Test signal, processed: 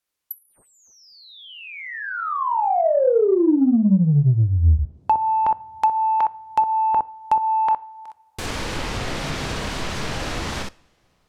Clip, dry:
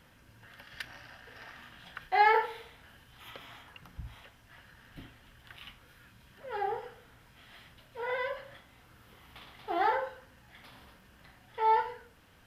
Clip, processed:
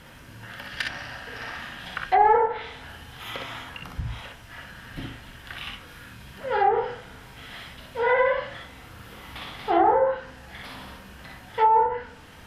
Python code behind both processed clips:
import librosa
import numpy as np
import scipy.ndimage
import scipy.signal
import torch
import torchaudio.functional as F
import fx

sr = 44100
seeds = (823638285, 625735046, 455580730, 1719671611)

p1 = fx.room_early_taps(x, sr, ms=(26, 47, 62), db=(-11.5, -9.0, -4.0))
p2 = 10.0 ** (-26.5 / 20.0) * np.tanh(p1 / 10.0 ** (-26.5 / 20.0))
p3 = p1 + (p2 * librosa.db_to_amplitude(-3.0))
p4 = fx.env_lowpass_down(p3, sr, base_hz=740.0, full_db=-20.0)
p5 = fx.rev_double_slope(p4, sr, seeds[0], early_s=0.51, late_s=4.9, knee_db=-22, drr_db=19.0)
y = p5 * librosa.db_to_amplitude(7.0)